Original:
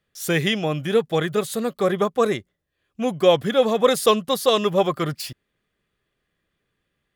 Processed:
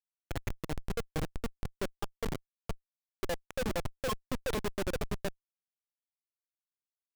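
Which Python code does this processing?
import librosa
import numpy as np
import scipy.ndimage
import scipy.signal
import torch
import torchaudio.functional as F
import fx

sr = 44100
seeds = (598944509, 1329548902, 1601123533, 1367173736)

y = fx.spec_dropout(x, sr, seeds[0], share_pct=64)
y = y + 10.0 ** (-5.5 / 20.0) * np.pad(y, (int(463 * sr / 1000.0), 0))[:len(y)]
y = fx.schmitt(y, sr, flips_db=-19.0)
y = y * 10.0 ** (-5.5 / 20.0)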